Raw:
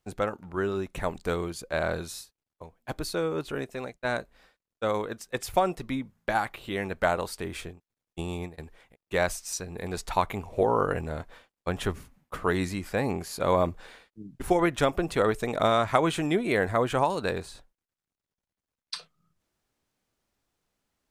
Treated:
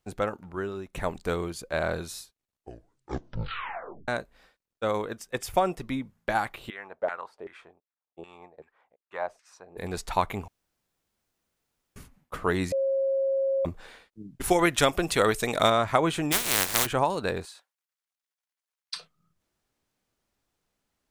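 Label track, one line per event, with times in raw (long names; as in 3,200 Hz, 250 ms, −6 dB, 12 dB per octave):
0.410000	0.930000	fade out quadratic, to −7 dB
2.190000	2.190000	tape stop 1.89 s
5.150000	5.850000	notch filter 4,100 Hz
6.700000	9.770000	auto-filter band-pass saw down 2.6 Hz 470–1,900 Hz
10.480000	11.960000	fill with room tone
12.720000	13.650000	beep over 541 Hz −22.5 dBFS
14.400000	15.700000	high-shelf EQ 2,100 Hz +11.5 dB
16.310000	16.850000	compressing power law on the bin magnitudes exponent 0.14
17.450000	18.960000	high-pass filter 990 Hz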